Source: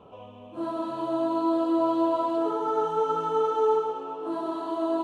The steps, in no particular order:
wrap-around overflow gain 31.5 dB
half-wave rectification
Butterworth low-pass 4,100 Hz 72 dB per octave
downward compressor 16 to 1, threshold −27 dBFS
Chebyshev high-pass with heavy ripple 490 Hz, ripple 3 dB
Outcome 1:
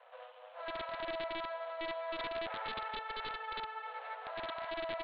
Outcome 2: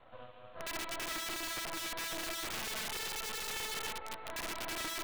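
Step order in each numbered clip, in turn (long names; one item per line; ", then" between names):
downward compressor, then half-wave rectification, then Chebyshev high-pass with heavy ripple, then wrap-around overflow, then Butterworth low-pass
Chebyshev high-pass with heavy ripple, then downward compressor, then half-wave rectification, then Butterworth low-pass, then wrap-around overflow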